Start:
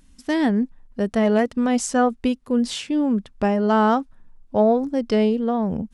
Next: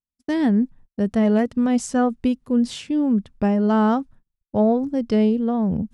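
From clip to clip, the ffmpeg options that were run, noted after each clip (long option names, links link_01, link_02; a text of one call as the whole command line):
ffmpeg -i in.wav -af "equalizer=frequency=120:width_type=o:width=2.5:gain=10,agate=range=-45dB:threshold=-38dB:ratio=16:detection=peak,volume=-4.5dB" out.wav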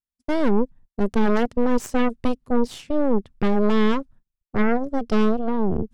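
ffmpeg -i in.wav -af "lowshelf=frequency=170:gain=3.5,aeval=exprs='0.473*(cos(1*acos(clip(val(0)/0.473,-1,1)))-cos(1*PI/2))+0.188*(cos(6*acos(clip(val(0)/0.473,-1,1)))-cos(6*PI/2))':channel_layout=same,volume=-6dB" out.wav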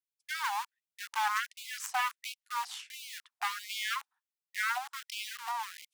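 ffmpeg -i in.wav -filter_complex "[0:a]asplit=2[link_01][link_02];[link_02]acrusher=bits=3:mix=0:aa=0.000001,volume=-10dB[link_03];[link_01][link_03]amix=inputs=2:normalize=0,afftfilt=real='re*gte(b*sr/1024,700*pow(2200/700,0.5+0.5*sin(2*PI*1.4*pts/sr)))':imag='im*gte(b*sr/1024,700*pow(2200/700,0.5+0.5*sin(2*PI*1.4*pts/sr)))':win_size=1024:overlap=0.75,volume=-3.5dB" out.wav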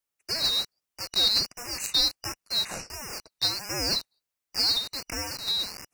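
ffmpeg -i in.wav -af "afftfilt=real='real(if(lt(b,272),68*(eq(floor(b/68),0)*2+eq(floor(b/68),1)*3+eq(floor(b/68),2)*0+eq(floor(b/68),3)*1)+mod(b,68),b),0)':imag='imag(if(lt(b,272),68*(eq(floor(b/68),0)*2+eq(floor(b/68),1)*3+eq(floor(b/68),2)*0+eq(floor(b/68),3)*1)+mod(b,68),b),0)':win_size=2048:overlap=0.75,volume=7.5dB" out.wav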